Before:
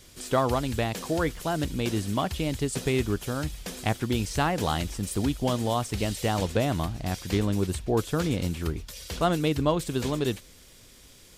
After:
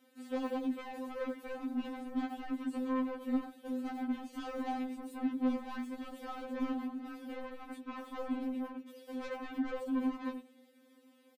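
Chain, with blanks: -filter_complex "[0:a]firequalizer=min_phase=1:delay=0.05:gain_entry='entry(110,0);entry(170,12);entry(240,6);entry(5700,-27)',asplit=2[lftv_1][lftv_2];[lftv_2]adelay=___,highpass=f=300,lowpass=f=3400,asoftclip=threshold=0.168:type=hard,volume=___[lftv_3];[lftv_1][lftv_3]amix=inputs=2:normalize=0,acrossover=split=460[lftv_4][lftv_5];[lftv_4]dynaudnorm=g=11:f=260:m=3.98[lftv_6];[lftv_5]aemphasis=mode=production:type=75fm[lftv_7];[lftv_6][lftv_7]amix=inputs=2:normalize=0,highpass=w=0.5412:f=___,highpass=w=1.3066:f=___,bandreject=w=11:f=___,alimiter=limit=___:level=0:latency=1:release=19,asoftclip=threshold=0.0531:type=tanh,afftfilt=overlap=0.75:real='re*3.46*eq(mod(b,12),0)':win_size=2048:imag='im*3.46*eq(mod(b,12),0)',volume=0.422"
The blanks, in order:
90, 0.282, 240, 240, 980, 0.299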